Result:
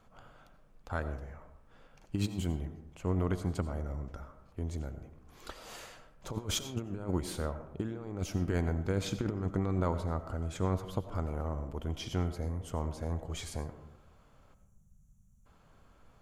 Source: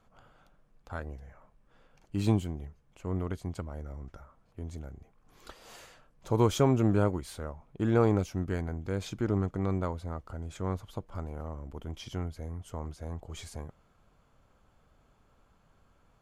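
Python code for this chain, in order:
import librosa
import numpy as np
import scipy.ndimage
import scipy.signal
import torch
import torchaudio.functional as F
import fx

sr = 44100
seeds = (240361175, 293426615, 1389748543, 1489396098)

y = fx.over_compress(x, sr, threshold_db=-31.0, ratio=-0.5)
y = fx.spec_box(y, sr, start_s=14.54, length_s=0.92, low_hz=220.0, high_hz=5600.0, gain_db=-28)
y = fx.rev_freeverb(y, sr, rt60_s=0.87, hf_ratio=0.35, predelay_ms=50, drr_db=10.5)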